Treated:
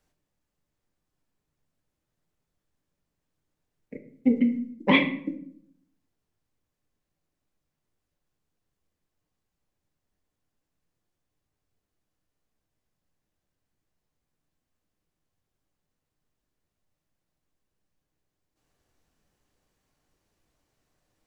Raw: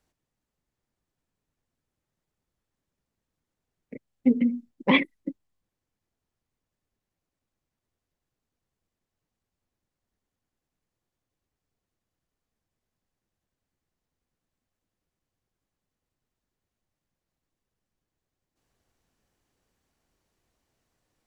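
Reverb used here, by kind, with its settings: simulated room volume 100 m³, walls mixed, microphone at 0.44 m

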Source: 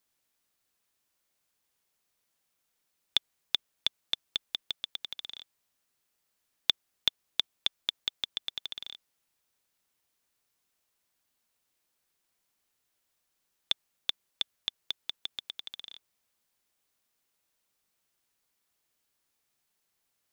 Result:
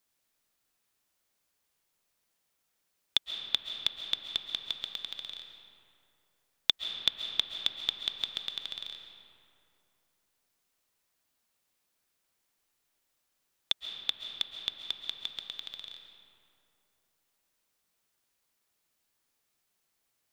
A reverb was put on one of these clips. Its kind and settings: algorithmic reverb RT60 2.8 s, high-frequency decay 0.5×, pre-delay 95 ms, DRR 5.5 dB

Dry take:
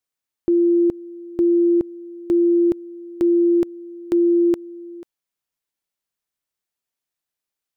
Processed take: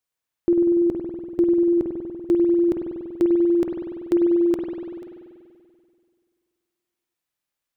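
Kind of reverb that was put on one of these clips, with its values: spring tank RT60 2.2 s, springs 48 ms, chirp 60 ms, DRR 0.5 dB

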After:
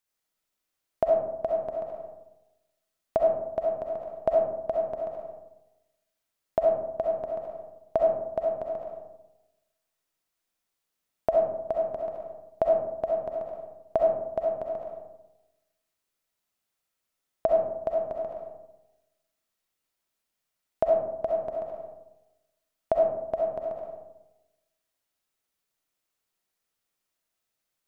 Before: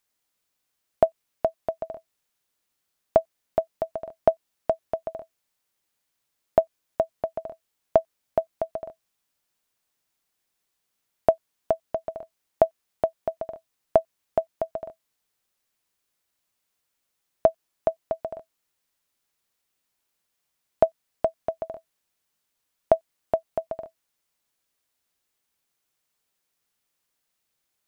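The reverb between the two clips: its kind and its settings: algorithmic reverb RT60 1 s, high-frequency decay 0.35×, pre-delay 25 ms, DRR -1.5 dB; trim -7 dB

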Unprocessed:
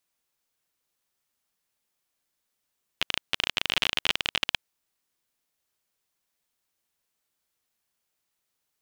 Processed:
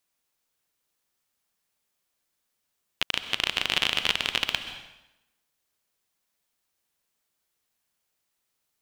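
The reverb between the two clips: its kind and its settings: plate-style reverb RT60 0.96 s, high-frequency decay 0.85×, pre-delay 115 ms, DRR 9 dB; trim +1 dB

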